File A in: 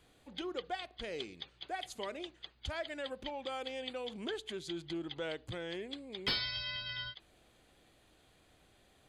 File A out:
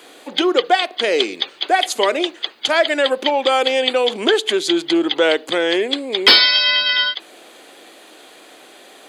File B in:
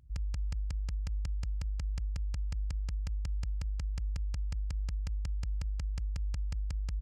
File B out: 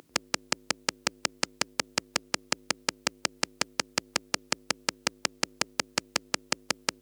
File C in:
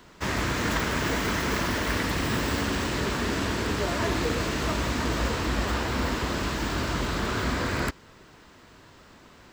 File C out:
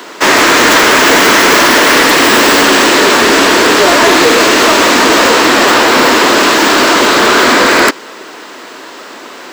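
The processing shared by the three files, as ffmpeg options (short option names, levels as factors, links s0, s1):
-af "highpass=f=290:w=0.5412,highpass=f=290:w=1.3066,apsyclip=20,volume=0.841"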